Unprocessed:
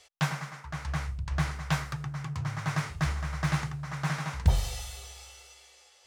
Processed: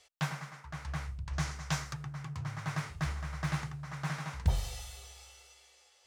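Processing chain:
0:01.33–0:01.94: parametric band 6,200 Hz +8.5 dB 1 octave
level −5.5 dB

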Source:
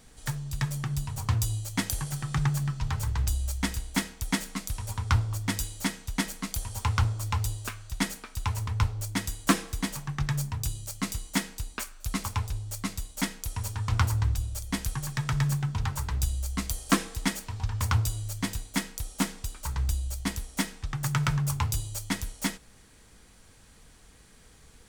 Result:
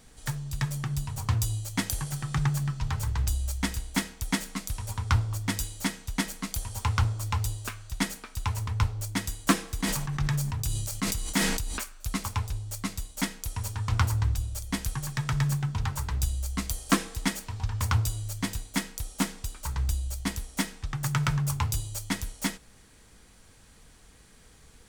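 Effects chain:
0:09.78–0:11.78: level that may fall only so fast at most 32 dB per second

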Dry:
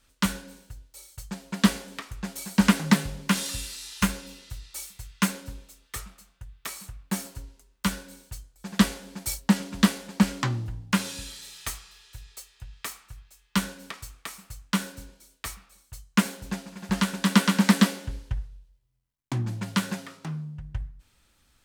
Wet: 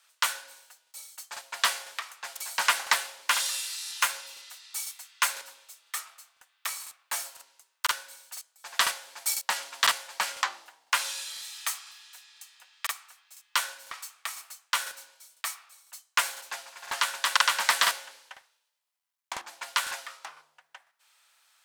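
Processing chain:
high-pass filter 740 Hz 24 dB per octave
regular buffer underruns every 0.50 s, samples 2,048, repeat, from 0:00.82
level +3 dB

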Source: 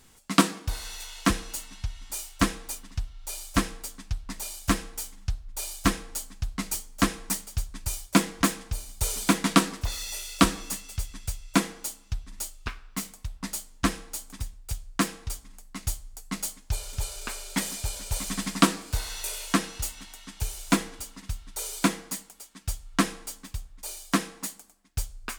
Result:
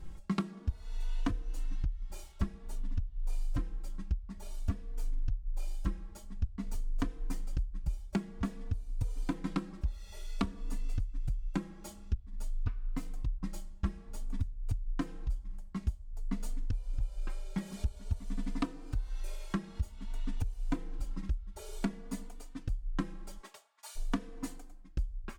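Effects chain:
0:23.36–0:23.95: high-pass filter 340 Hz → 1,100 Hz 24 dB per octave
spectral tilt −4 dB per octave
downward compressor 10 to 1, threshold −30 dBFS, peak gain reduction 24.5 dB
barber-pole flanger 3.3 ms +0.52 Hz
level +2.5 dB

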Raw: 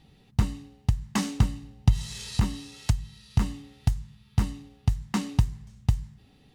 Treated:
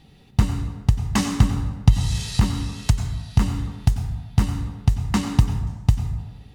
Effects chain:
dense smooth reverb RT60 1.2 s, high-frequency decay 0.45×, pre-delay 80 ms, DRR 6 dB
level +5.5 dB

